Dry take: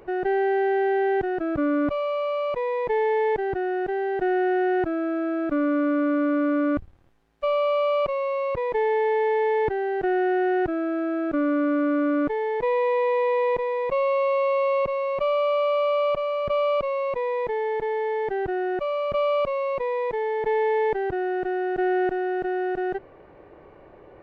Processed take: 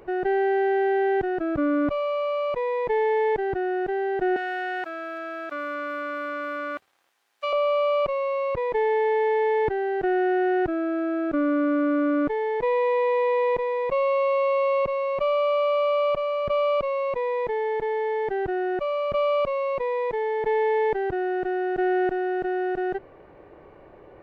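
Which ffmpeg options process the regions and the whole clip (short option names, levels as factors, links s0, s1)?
-filter_complex "[0:a]asettb=1/sr,asplit=3[s0][s1][s2];[s0]atrim=end=4.364[s3];[s1]atrim=start=4.36:end=7.53,asetpts=PTS-STARTPTS,afade=t=in:d=0.004:c=qsin,afade=t=out:st=3.166:d=0.004:c=qsin,highpass=790,highshelf=f=2900:g=10[s4];[s2]atrim=start=7.526[s5];[s3][s4]acrossfade=d=0.004:c1=hsin:c2=qsin[s6];[s6][s5]acrossfade=d=0.004:c1=qsin:c2=hsin"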